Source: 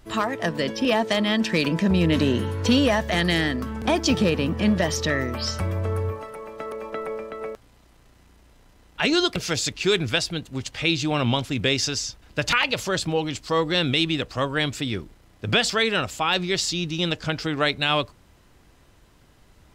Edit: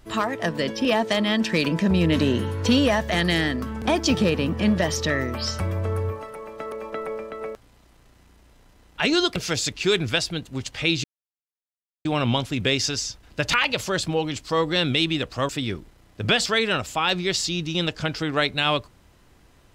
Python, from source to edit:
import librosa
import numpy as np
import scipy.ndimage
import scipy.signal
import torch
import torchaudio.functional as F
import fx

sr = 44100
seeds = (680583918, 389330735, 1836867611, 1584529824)

y = fx.edit(x, sr, fx.insert_silence(at_s=11.04, length_s=1.01),
    fx.cut(start_s=14.48, length_s=0.25), tone=tone)